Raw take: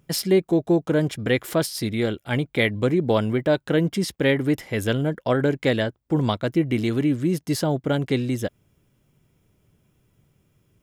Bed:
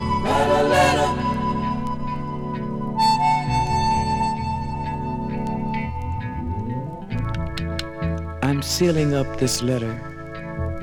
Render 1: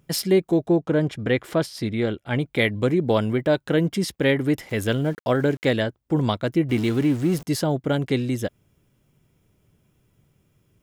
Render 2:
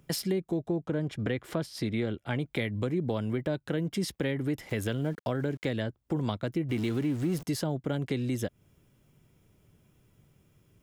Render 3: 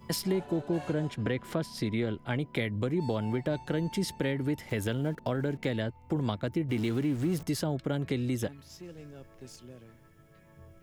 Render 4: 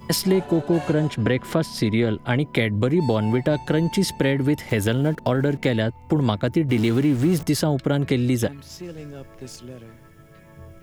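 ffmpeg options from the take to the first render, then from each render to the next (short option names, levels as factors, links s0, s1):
-filter_complex "[0:a]asplit=3[s0][s1][s2];[s0]afade=t=out:st=0.67:d=0.02[s3];[s1]aemphasis=mode=reproduction:type=50kf,afade=t=in:st=0.67:d=0.02,afade=t=out:st=2.39:d=0.02[s4];[s2]afade=t=in:st=2.39:d=0.02[s5];[s3][s4][s5]amix=inputs=3:normalize=0,asettb=1/sr,asplit=3[s6][s7][s8];[s6]atrim=end=4.694[s9];[s7]atrim=start=4.69:end=5.73,asetpts=PTS-STARTPTS,afade=t=in:d=0.004:c=qsin,afade=t=out:st=1.036:d=0.004:c=qsin,aeval=exprs='val(0)*gte(abs(val(0)),0.00841)':c=same[s10];[s8]atrim=start=5.726[s11];[s9][s10]acrossfade=d=0.004:c1=hsin:c2=qsin[s12];[s12][s11]acrossfade=d=0.004:c1=qsin:c2=hsin,asettb=1/sr,asplit=3[s13][s14][s15];[s13]atrim=end=6.694[s16];[s14]atrim=start=6.69:end=7.43,asetpts=PTS-STARTPTS,afade=t=in:d=0.004:c=qsin,afade=t=out:st=0.736:d=0.004:c=qsin,aeval=exprs='val(0)+0.5*0.0224*sgn(val(0))':c=same[s17];[s15]atrim=start=7.426[s18];[s16][s17]acrossfade=d=0.004:c1=hsin:c2=qsin[s19];[s19][s18]acrossfade=d=0.004:c1=qsin:c2=hsin"
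-filter_complex "[0:a]acrossover=split=250[s0][s1];[s0]alimiter=level_in=1.5:limit=0.0631:level=0:latency=1:release=193,volume=0.668[s2];[s1]acompressor=threshold=0.0251:ratio=5[s3];[s2][s3]amix=inputs=2:normalize=0"
-filter_complex "[1:a]volume=0.0422[s0];[0:a][s0]amix=inputs=2:normalize=0"
-af "volume=3.16"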